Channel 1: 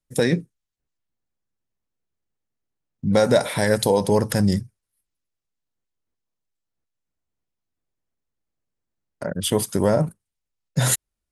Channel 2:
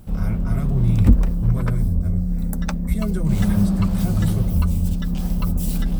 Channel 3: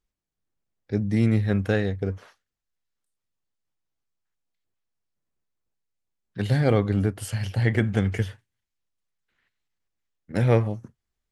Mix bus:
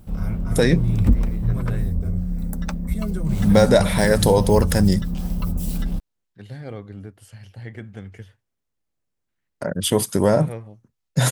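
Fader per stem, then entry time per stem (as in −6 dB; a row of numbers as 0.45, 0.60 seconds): +2.0, −3.0, −14.0 decibels; 0.40, 0.00, 0.00 seconds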